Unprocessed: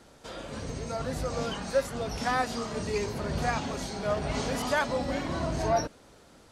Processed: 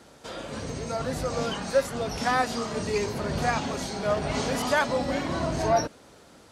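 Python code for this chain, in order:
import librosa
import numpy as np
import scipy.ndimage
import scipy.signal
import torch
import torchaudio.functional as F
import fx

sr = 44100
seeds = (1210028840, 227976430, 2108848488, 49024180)

y = fx.highpass(x, sr, hz=85.0, slope=6)
y = y * librosa.db_to_amplitude(3.5)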